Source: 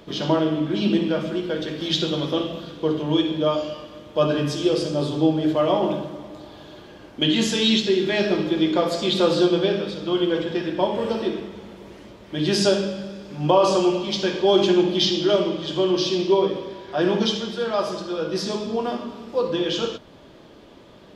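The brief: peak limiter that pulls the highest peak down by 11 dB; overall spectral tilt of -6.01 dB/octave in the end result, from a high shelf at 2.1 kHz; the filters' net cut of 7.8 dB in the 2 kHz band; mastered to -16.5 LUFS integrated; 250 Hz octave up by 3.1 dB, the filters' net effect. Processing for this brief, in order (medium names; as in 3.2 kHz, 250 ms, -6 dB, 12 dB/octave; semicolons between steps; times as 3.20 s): peaking EQ 250 Hz +5 dB; peaking EQ 2 kHz -9 dB; treble shelf 2.1 kHz -3 dB; trim +8 dB; peak limiter -7.5 dBFS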